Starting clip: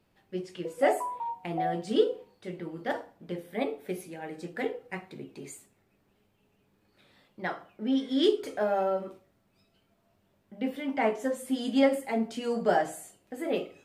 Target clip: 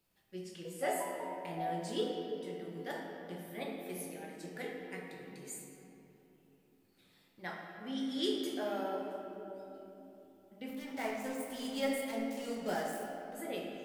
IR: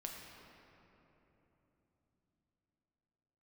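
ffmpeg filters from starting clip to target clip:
-filter_complex "[0:a]asettb=1/sr,asplit=3[link_01][link_02][link_03];[link_01]atrim=end=10.694[link_04];[link_02]atrim=start=10.69:end=13.35,asetpts=PTS-STARTPTS,afade=type=in:duration=0.004:curve=qsin,afade=type=out:start_time=2.656:duration=0.004:curve=qsin,aeval=exprs='sgn(val(0))*max(abs(val(0))-0.00794,0)':channel_layout=same[link_05];[link_03]atrim=start=13.346[link_06];[link_04][link_05]acrossfade=duration=0.004:curve1=hsin:curve2=qsin[link_07];[link_07][link_06]acrossfade=duration=0.004:curve1=qsin:curve2=hsin,crystalizer=i=3.5:c=0[link_08];[1:a]atrim=start_sample=2205,asetrate=48510,aresample=44100[link_09];[link_08][link_09]afir=irnorm=-1:irlink=0,volume=-6.5dB"

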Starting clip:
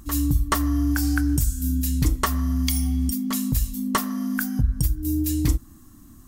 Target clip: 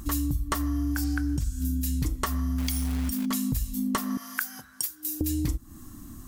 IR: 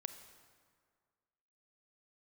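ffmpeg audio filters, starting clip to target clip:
-filter_complex "[0:a]asettb=1/sr,asplit=3[link_01][link_02][link_03];[link_01]atrim=end=1.044[link_04];[link_02]atrim=start=1.04:end=1.65,asetpts=PTS-STARTPTS,afade=type=in:duration=0.004:curve=qsin,afade=type=out:start_time=0.606:duration=0.004:curve=qsin,acrossover=split=6400[link_05][link_06];[link_06]acompressor=threshold=-44dB:ratio=4:attack=1:release=60[link_07];[link_05][link_07]amix=inputs=2:normalize=0[link_08];[link_03]atrim=start=1.646[link_09];[link_04][link_08]acrossfade=duration=0.004:curve1=hsin:curve2=qsin[link_10];[link_10][link_09]acrossfade=duration=0.004:curve1=qsin:curve2=hsin,asettb=1/sr,asplit=3[link_11][link_12][link_13];[link_11]atrim=end=2.584[link_14];[link_12]atrim=start=2.58:end=3.26,asetpts=PTS-STARTPTS,afade=type=in:duration=0.004:curve=qsin,afade=type=out:start_time=0.676:duration=0.004:curve=qsin,acrusher=bits=3:mode=log:mix=0:aa=0.000001[link_15];[link_13]atrim=start=3.256[link_16];[link_14][link_15]acrossfade=duration=0.004:curve1=hsin:curve2=qsin[link_17];[link_17][link_16]acrossfade=duration=0.004:curve1=qsin:curve2=hsin,asettb=1/sr,asplit=3[link_18][link_19][link_20];[link_18]atrim=end=4.174[link_21];[link_19]atrim=start=4.17:end=5.21,asetpts=PTS-STARTPTS,afade=type=in:duration=0.004:curve=qsin,afade=type=out:start_time=1.036:duration=0.004:curve=qsin,highpass=990[link_22];[link_20]atrim=start=5.206[link_23];[link_21][link_22]acrossfade=duration=0.004:curve1=hsin:curve2=qsin[link_24];[link_24][link_23]acrossfade=duration=0.004:curve1=qsin:curve2=hsin,acompressor=threshold=-30dB:ratio=5,volume=4.5dB"

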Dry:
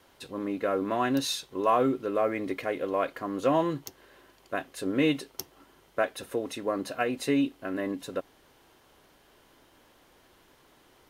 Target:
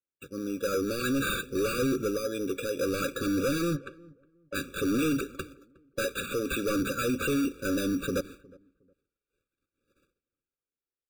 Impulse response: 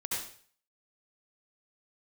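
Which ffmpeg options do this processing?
-filter_complex "[0:a]dynaudnorm=framelen=150:gausssize=13:maxgain=11dB,aphaser=in_gain=1:out_gain=1:delay=2.2:decay=0.34:speed=0.6:type=sinusoidal,asettb=1/sr,asplit=3[link_01][link_02][link_03];[link_01]atrim=end=2.074[link_04];[link_02]atrim=start=2.07:end=2.79,asetpts=PTS-STARTPTS,afade=type=in:duration=0.004:curve=qsin,afade=type=out:start_time=0.716:duration=0.004:curve=qsin,acompressor=threshold=-25dB:ratio=6[link_05];[link_03]atrim=start=2.786[link_06];[link_04][link_05]acrossfade=duration=0.004:curve1=hsin:curve2=qsin[link_07];[link_07][link_06]acrossfade=duration=0.004:curve1=qsin:curve2=hsin,asettb=1/sr,asplit=3[link_08][link_09][link_10];[link_08]atrim=end=6.184[link_11];[link_09]atrim=start=6.18:end=6.71,asetpts=PTS-STARTPTS,afade=type=in:duration=0.004:curve=qsin,afade=type=out:start_time=0.526:duration=0.004:curve=qsin,tiltshelf=frequency=1200:gain=-7.5[link_12];[link_10]atrim=start=6.706[link_13];[link_11][link_12]acrossfade=duration=0.004:curve1=hsin:curve2=qsin[link_14];[link_14][link_13]acrossfade=duration=0.004:curve1=qsin:curve2=hsin,acrusher=samples=8:mix=1:aa=0.000001,asoftclip=type=hard:threshold=-24.5dB,asplit=3[link_15][link_16][link_17];[link_15]afade=type=out:start_time=3.75:duration=0.02[link_18];[link_16]bandpass=frequency=770:width_type=q:width=0.62:csg=0,afade=type=in:start_time=3.75:duration=0.02,afade=type=out:start_time=4.54:duration=0.02[link_19];[link_17]afade=type=in:start_time=4.54:duration=0.02[link_20];[link_18][link_19][link_20]amix=inputs=3:normalize=0,agate=range=-44dB:threshold=-43dB:ratio=16:detection=peak,asplit=2[link_21][link_22];[link_22]adelay=362,lowpass=frequency=840:poles=1,volume=-22.5dB,asplit=2[link_23][link_24];[link_24]adelay=362,lowpass=frequency=840:poles=1,volume=0.25[link_25];[link_21][link_23][link_25]amix=inputs=3:normalize=0,afftfilt=real='re*eq(mod(floor(b*sr/1024/560),2),0)':imag='im*eq(mod(floor(b*sr/1024/560),2),0)':win_size=1024:overlap=0.75"

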